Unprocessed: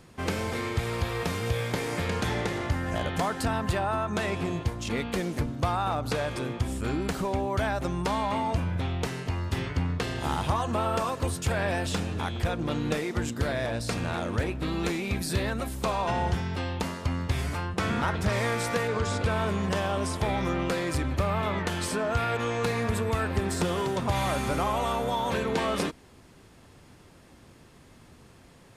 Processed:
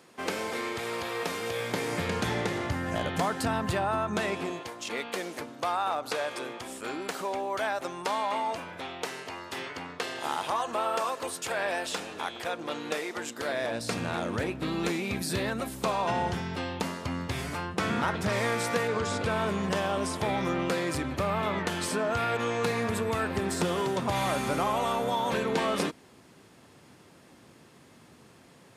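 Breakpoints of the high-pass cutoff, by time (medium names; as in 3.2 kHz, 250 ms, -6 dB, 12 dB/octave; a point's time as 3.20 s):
1.49 s 300 Hz
1.95 s 110 Hz
4.09 s 110 Hz
4.63 s 440 Hz
13.36 s 440 Hz
13.98 s 140 Hz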